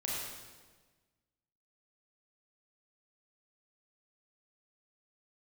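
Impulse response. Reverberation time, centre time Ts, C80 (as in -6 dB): 1.4 s, 97 ms, 0.5 dB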